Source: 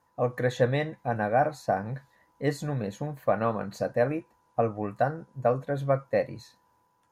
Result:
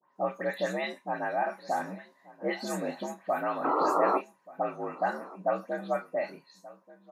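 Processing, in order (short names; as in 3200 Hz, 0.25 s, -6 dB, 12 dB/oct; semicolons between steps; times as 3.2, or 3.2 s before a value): spectral delay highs late, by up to 0.159 s; HPF 83 Hz; low shelf 290 Hz -11 dB; frequency shift +58 Hz; in parallel at -0.5 dB: limiter -25.5 dBFS, peak gain reduction 11 dB; on the sum: vocal rider within 3 dB 0.5 s; painted sound noise, 3.64–4.18, 270–1400 Hz -22 dBFS; doubler 32 ms -11 dB; on a send: echo 1.182 s -19.5 dB; on the sum: mismatched tape noise reduction decoder only; gain -4.5 dB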